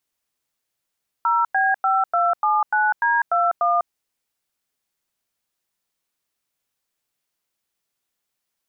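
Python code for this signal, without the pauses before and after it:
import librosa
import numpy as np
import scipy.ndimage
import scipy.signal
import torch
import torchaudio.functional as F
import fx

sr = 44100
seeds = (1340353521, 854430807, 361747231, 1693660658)

y = fx.dtmf(sr, digits='0B5279D21', tone_ms=199, gap_ms=96, level_db=-18.5)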